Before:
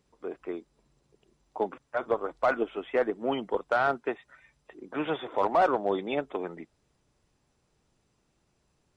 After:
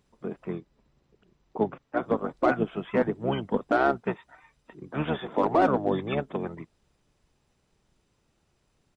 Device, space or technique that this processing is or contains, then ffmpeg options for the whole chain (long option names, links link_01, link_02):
octave pedal: -filter_complex "[0:a]asettb=1/sr,asplit=3[link_01][link_02][link_03];[link_01]atrim=end=0.554[link_04];[link_02]atrim=start=0.55:end=2.03,asetpts=PTS-STARTPTS,afade=type=in:duration=0.004:curve=qsin,afade=type=out:start_time=1.476:duration=0.004:curve=qsin,lowpass=5000[link_05];[link_03]atrim=start=2.026[link_06];[link_04][link_05]acrossfade=duration=0.004:curve1=hsin:curve2=qsin[link_07];[link_07][link_06]acrossfade=duration=0.004:curve1=qsin:curve2=hsin,asplit=2[link_08][link_09];[link_09]asetrate=22050,aresample=44100,atempo=2,volume=-2dB[link_10];[link_08][link_10]amix=inputs=2:normalize=0"